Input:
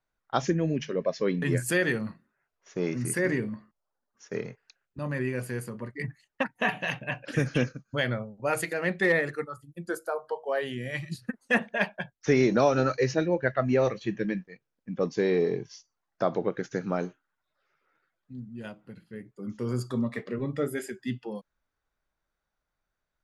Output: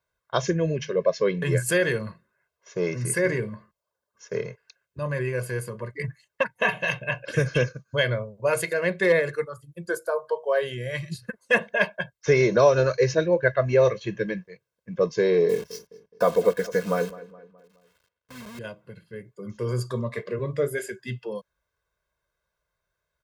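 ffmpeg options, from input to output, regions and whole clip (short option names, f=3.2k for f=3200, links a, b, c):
-filter_complex "[0:a]asettb=1/sr,asplit=3[a][b][c];[a]atrim=end=15.494[d];[b]atrim=start=15.49:end=18.59,asetpts=PTS-STARTPTS,afade=t=in:d=0.004:c=qsin,afade=t=out:st=3.096:d=0.004:c=qsin,aecho=1:1:4.1:0.8,atrim=end_sample=136710,acrusher=bits=8:dc=4:mix=0:aa=0.000001,asplit=2[e][f];[f]adelay=210,lowpass=f=2.3k:p=1,volume=-17dB,asplit=2[g][h];[h]adelay=210,lowpass=f=2.3k:p=1,volume=0.47,asplit=2[i][j];[j]adelay=210,lowpass=f=2.3k:p=1,volume=0.47,asplit=2[k][l];[l]adelay=210,lowpass=f=2.3k:p=1,volume=0.47[m];[e][g][i][k][m]amix=inputs=5:normalize=0,atrim=end_sample=136710[n];[c]atrim=start=18.586[o];[d][n]acrossfade=d=0.004:c1=hsin:c2=qsin[p];[p][o]acrossfade=d=0.004:c1=qsin:c2=hsin,highpass=51,aecho=1:1:1.9:0.77,volume=2dB"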